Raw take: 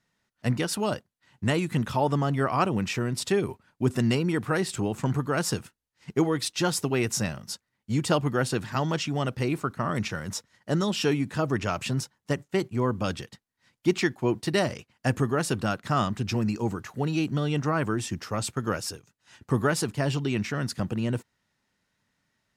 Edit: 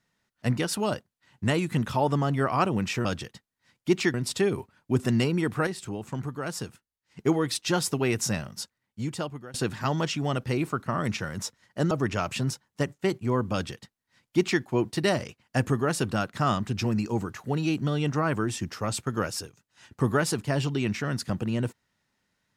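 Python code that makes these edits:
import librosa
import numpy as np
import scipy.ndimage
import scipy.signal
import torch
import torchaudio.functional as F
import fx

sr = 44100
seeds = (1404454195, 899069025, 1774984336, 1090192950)

y = fx.edit(x, sr, fx.clip_gain(start_s=4.58, length_s=1.52, db=-6.5),
    fx.fade_out_to(start_s=7.48, length_s=0.97, floor_db=-23.5),
    fx.cut(start_s=10.82, length_s=0.59),
    fx.duplicate(start_s=13.03, length_s=1.09, to_s=3.05), tone=tone)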